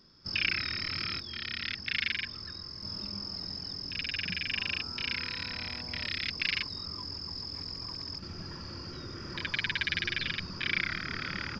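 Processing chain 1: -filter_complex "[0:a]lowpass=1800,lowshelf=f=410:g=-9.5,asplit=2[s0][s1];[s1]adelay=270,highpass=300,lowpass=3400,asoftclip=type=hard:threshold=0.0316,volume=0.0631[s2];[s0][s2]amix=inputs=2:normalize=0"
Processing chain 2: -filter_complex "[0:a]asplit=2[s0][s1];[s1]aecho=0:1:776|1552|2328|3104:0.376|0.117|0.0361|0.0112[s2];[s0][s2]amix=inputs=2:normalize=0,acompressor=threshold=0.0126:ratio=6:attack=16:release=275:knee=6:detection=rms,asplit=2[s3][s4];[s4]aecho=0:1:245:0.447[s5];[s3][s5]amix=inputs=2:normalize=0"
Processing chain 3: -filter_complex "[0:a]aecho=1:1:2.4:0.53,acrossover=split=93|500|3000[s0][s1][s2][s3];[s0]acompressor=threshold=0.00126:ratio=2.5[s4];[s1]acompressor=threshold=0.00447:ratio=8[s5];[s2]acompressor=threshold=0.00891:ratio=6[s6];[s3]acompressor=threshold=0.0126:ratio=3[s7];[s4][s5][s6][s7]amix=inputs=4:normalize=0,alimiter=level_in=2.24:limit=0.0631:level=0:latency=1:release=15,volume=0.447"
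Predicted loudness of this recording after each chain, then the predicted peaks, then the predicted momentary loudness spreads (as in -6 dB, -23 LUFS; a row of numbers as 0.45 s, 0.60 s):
-40.5 LUFS, -40.0 LUFS, -39.5 LUFS; -20.5 dBFS, -23.5 dBFS, -31.0 dBFS; 16 LU, 2 LU, 3 LU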